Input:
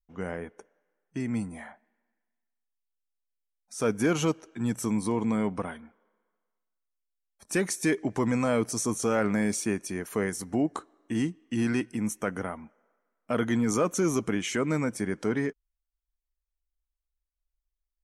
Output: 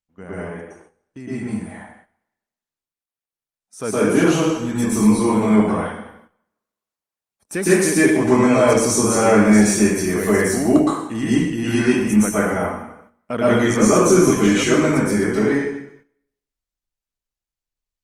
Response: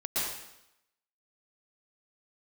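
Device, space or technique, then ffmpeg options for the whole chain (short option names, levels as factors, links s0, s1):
speakerphone in a meeting room: -filter_complex "[1:a]atrim=start_sample=2205[s0];[0:a][s0]afir=irnorm=-1:irlink=0,dynaudnorm=f=810:g=9:m=4.73,agate=range=0.316:threshold=0.00447:ratio=16:detection=peak,volume=0.891" -ar 48000 -c:a libopus -b:a 32k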